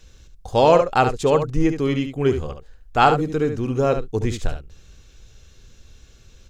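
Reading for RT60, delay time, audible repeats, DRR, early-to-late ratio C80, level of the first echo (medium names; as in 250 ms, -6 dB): no reverb, 71 ms, 1, no reverb, no reverb, -8.5 dB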